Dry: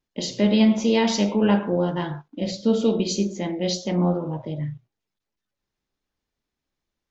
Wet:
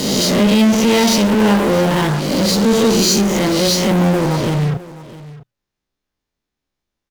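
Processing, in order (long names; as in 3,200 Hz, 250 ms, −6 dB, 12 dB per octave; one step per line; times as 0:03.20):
peak hold with a rise ahead of every peak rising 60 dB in 0.73 s
0:02.47–0:03.21: high-shelf EQ 4,600 Hz +7.5 dB
in parallel at −4 dB: fuzz pedal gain 45 dB, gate −42 dBFS
on the sum: single-tap delay 658 ms −18 dB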